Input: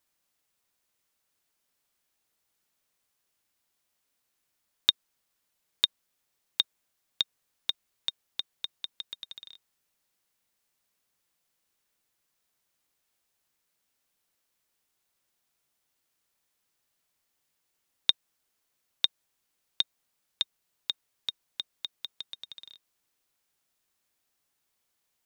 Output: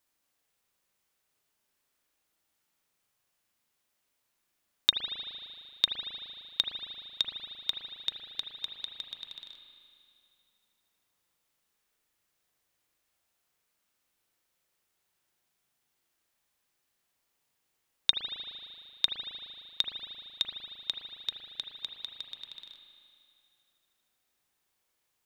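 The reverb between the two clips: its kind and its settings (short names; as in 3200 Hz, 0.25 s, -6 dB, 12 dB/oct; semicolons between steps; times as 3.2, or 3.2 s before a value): spring tank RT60 2.5 s, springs 38 ms, chirp 75 ms, DRR 1.5 dB; gain -1 dB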